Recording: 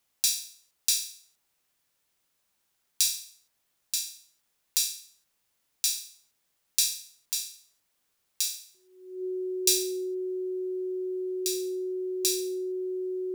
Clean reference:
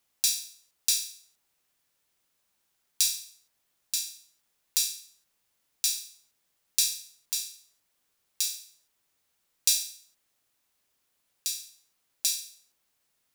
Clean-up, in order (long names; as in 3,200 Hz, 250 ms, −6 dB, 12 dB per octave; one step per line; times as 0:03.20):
notch filter 370 Hz, Q 30